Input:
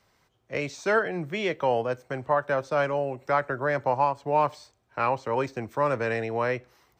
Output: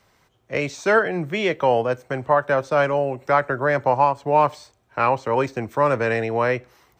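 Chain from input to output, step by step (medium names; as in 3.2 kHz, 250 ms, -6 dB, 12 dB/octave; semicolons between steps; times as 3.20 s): peaking EQ 4.8 kHz -2.5 dB 0.43 oct; trim +6 dB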